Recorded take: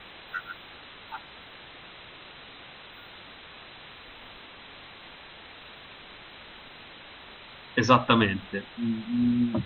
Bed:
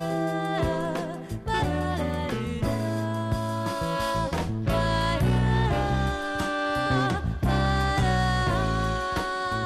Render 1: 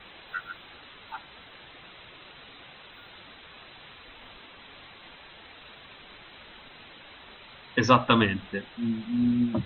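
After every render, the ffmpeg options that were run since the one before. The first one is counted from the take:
-af "afftdn=nr=6:nf=-48"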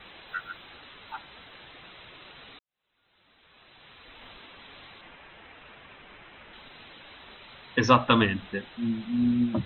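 -filter_complex "[0:a]asettb=1/sr,asplit=3[s0][s1][s2];[s0]atrim=end=5.014[s3];[s1]atrim=start=5.01:end=6.53,asetpts=PTS-STARTPTS,afade=t=in:d=0.004:c=qsin,afade=t=out:st=1.516:d=0.004:c=qsin,lowpass=f=3000:w=0.5412,lowpass=f=3000:w=1.3066[s4];[s2]atrim=start=6.526[s5];[s3][s4]acrossfade=d=0.004:c1=hsin:c2=qsin[s6];[s6][s5]acrossfade=d=0.004:c1=qsin:c2=hsin,asplit=2[s7][s8];[s7]atrim=end=2.59,asetpts=PTS-STARTPTS,afade=t=out:st=2.586:d=0.004:c=hsin[s9];[s8]atrim=start=2.59,asetpts=PTS-STARTPTS,afade=t=in:d=1.65:c=qua[s10];[s9][s10]concat=n=2:v=0:a=1"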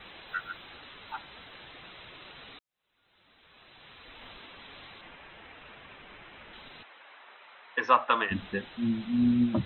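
-filter_complex "[0:a]asplit=3[s0][s1][s2];[s0]afade=t=out:st=6.82:d=0.02[s3];[s1]highpass=690,lowpass=2100,afade=t=in:st=6.82:d=0.02,afade=t=out:st=8.3:d=0.02[s4];[s2]afade=t=in:st=8.3:d=0.02[s5];[s3][s4][s5]amix=inputs=3:normalize=0"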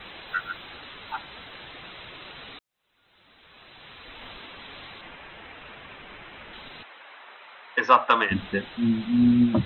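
-af "acontrast=45"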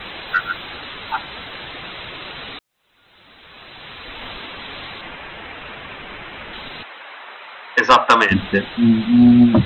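-af "aeval=exprs='0.631*sin(PI/2*2*val(0)/0.631)':c=same"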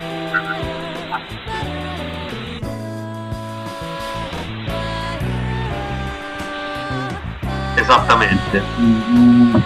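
-filter_complex "[1:a]volume=1.06[s0];[0:a][s0]amix=inputs=2:normalize=0"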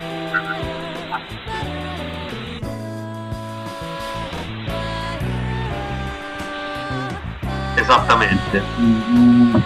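-af "volume=0.841"

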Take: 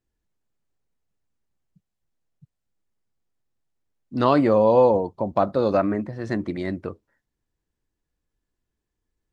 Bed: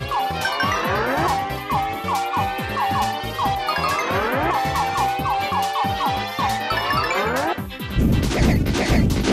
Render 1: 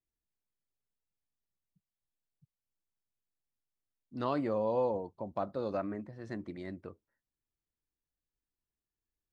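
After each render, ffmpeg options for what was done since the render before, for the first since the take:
-af "volume=0.188"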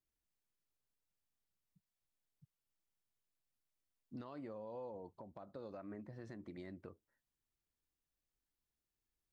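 -af "acompressor=threshold=0.01:ratio=6,alimiter=level_in=5.62:limit=0.0631:level=0:latency=1:release=317,volume=0.178"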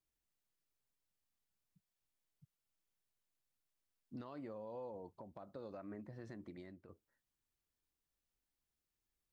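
-filter_complex "[0:a]asplit=2[s0][s1];[s0]atrim=end=6.89,asetpts=PTS-STARTPTS,afade=t=out:st=6.41:d=0.48:silence=0.316228[s2];[s1]atrim=start=6.89,asetpts=PTS-STARTPTS,afade=t=in:d=0.004:c=hsin:silence=0.316228[s3];[s2][s3]concat=n=2:v=0:a=1"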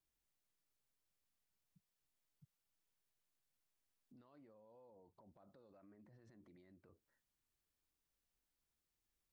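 -af "acompressor=threshold=0.00126:ratio=4,alimiter=level_in=47.3:limit=0.0631:level=0:latency=1:release=30,volume=0.0211"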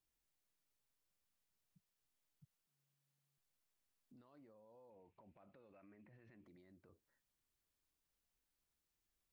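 -filter_complex "[0:a]asettb=1/sr,asplit=3[s0][s1][s2];[s0]atrim=end=2.664[s3];[s1]atrim=start=2.66:end=3.38,asetpts=PTS-STARTPTS,afade=t=in:d=0.004:c=qsin,afade=t=out:st=0.716:d=0.004:c=qsin,afreqshift=140[s4];[s2]atrim=start=3.376[s5];[s3][s4]acrossfade=d=0.004:c1=hsin:c2=qsin[s6];[s6][s5]acrossfade=d=0.004:c1=qsin:c2=hsin,asettb=1/sr,asplit=3[s7][s8][s9];[s7]atrim=end=4.904[s10];[s8]atrim=start=4.9:end=6.46,asetpts=PTS-STARTPTS,afade=t=in:d=0.004:c=qsin,afade=t=out:st=1.556:d=0.004:c=qsin,lowpass=f=2500:t=q:w=4.9[s11];[s9]atrim=start=6.456[s12];[s10][s11]acrossfade=d=0.004:c1=hsin:c2=qsin[s13];[s13][s12]acrossfade=d=0.004:c1=qsin:c2=hsin"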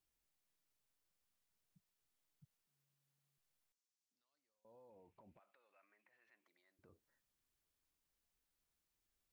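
-filter_complex "[0:a]asettb=1/sr,asplit=3[s0][s1][s2];[s0]atrim=end=3.724[s3];[s1]atrim=start=3.72:end=4.65,asetpts=PTS-STARTPTS,afade=t=in:d=0.004:c=qsin,afade=t=out:st=0.926:d=0.004:c=qsin,bandpass=f=6000:t=q:w=2[s4];[s2]atrim=start=4.646[s5];[s3][s4]acrossfade=d=0.004:c1=hsin:c2=qsin[s6];[s6][s5]acrossfade=d=0.004:c1=qsin:c2=hsin,asettb=1/sr,asplit=3[s7][s8][s9];[s7]atrim=end=5.394[s10];[s8]atrim=start=5.39:end=6.79,asetpts=PTS-STARTPTS,afade=t=in:d=0.004:c=qsin,afade=t=out:st=1.396:d=0.004:c=qsin,highpass=980[s11];[s9]atrim=start=6.786[s12];[s10][s11]acrossfade=d=0.004:c1=hsin:c2=qsin[s13];[s13][s12]acrossfade=d=0.004:c1=qsin:c2=hsin"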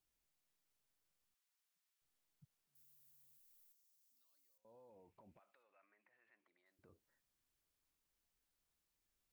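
-filter_complex "[0:a]asettb=1/sr,asplit=3[s0][s1][s2];[s0]atrim=end=1.344[s3];[s1]atrim=start=1.34:end=2.02,asetpts=PTS-STARTPTS,afade=t=in:d=0.004:c=qsin,afade=t=out:st=0.676:d=0.004:c=qsin,highpass=1000[s4];[s2]atrim=start=2.016[s5];[s3][s4]acrossfade=d=0.004:c1=hsin:c2=qsin[s6];[s6][s5]acrossfade=d=0.004:c1=qsin:c2=hsin,asettb=1/sr,asplit=3[s7][s8][s9];[s7]atrim=end=2.754[s10];[s8]atrim=start=2.75:end=4.58,asetpts=PTS-STARTPTS,afade=t=in:d=0.004:c=qsin,afade=t=out:st=1.826:d=0.004:c=qsin,aemphasis=mode=production:type=75fm[s11];[s9]atrim=start=4.576[s12];[s10][s11]acrossfade=d=0.004:c1=hsin:c2=qsin[s13];[s13][s12]acrossfade=d=0.004:c1=qsin:c2=hsin,asettb=1/sr,asplit=3[s14][s15][s16];[s14]atrim=end=5.634[s17];[s15]atrim=start=5.63:end=6.66,asetpts=PTS-STARTPTS,afade=t=in:d=0.004:c=qsin,afade=t=out:st=1.026:d=0.004:c=qsin,lowpass=2800[s18];[s16]atrim=start=6.656[s19];[s17][s18]acrossfade=d=0.004:c1=hsin:c2=qsin[s20];[s20][s19]acrossfade=d=0.004:c1=qsin:c2=hsin"

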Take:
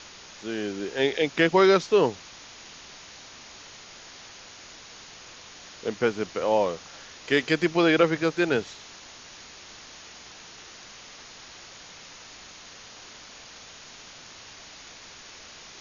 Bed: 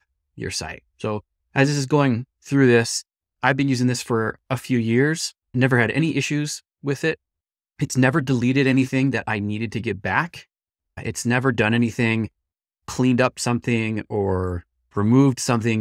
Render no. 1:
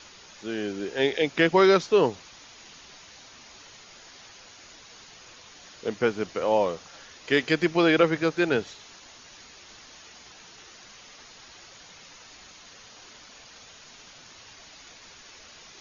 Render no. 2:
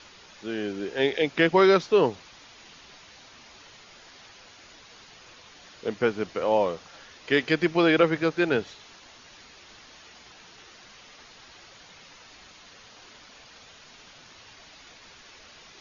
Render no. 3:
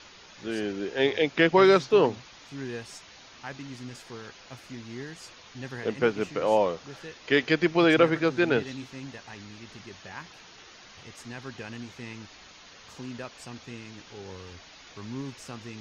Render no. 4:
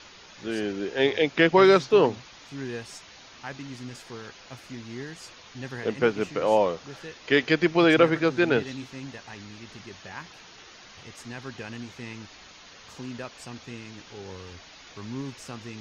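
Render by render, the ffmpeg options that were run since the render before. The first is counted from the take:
-af "afftdn=nr=6:nf=-47"
-af "lowpass=5200"
-filter_complex "[1:a]volume=0.0891[s0];[0:a][s0]amix=inputs=2:normalize=0"
-af "volume=1.19"

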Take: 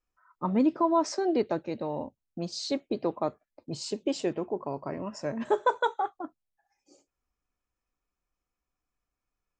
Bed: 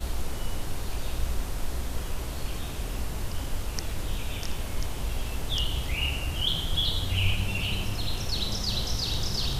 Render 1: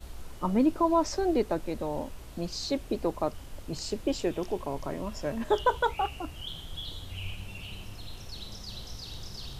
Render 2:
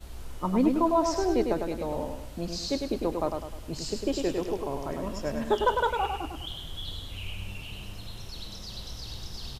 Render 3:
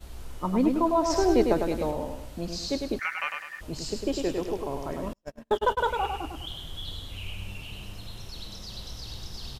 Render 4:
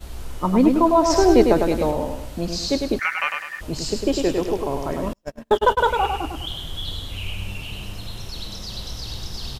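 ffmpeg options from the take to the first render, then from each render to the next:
-filter_complex "[1:a]volume=0.237[s0];[0:a][s0]amix=inputs=2:normalize=0"
-af "aecho=1:1:102|204|306|408|510:0.562|0.231|0.0945|0.0388|0.0159"
-filter_complex "[0:a]asettb=1/sr,asplit=3[s0][s1][s2];[s0]atrim=end=2.994[s3];[s1]atrim=start=2.99:end=3.61,asetpts=PTS-STARTPTS,afade=t=in:d=0.004:c=qsin,afade=t=out:st=0.616:d=0.004:c=qsin,aeval=exprs='val(0)*sin(2*PI*1800*n/s)':c=same[s4];[s2]atrim=start=3.606[s5];[s3][s4]acrossfade=d=0.004:c1=hsin:c2=qsin[s6];[s6][s5]acrossfade=d=0.004:c1=qsin:c2=hsin,asettb=1/sr,asplit=3[s7][s8][s9];[s7]atrim=end=5.134[s10];[s8]atrim=start=5.13:end=5.78,asetpts=PTS-STARTPTS,afade=t=in:d=0.004:c=qsin,afade=t=out:st=0.646:d=0.004:c=qsin,agate=range=0.00631:threshold=0.0398:ratio=16:release=100:detection=peak[s11];[s9]atrim=start=5.776[s12];[s10][s11]acrossfade=d=0.004:c1=hsin:c2=qsin[s13];[s13][s12]acrossfade=d=0.004:c1=qsin:c2=hsin,asplit=3[s14][s15][s16];[s14]atrim=end=1.102[s17];[s15]atrim=start=1.098:end=1.912,asetpts=PTS-STARTPTS,volume=1.58[s18];[s16]atrim=start=1.908[s19];[s17][s18]acrossfade=d=0.004:c1=hsin:c2=hsin[s20];[s20][s19]acrossfade=d=0.004:c1=hsin:c2=hsin"
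-af "volume=2.37,alimiter=limit=0.794:level=0:latency=1"

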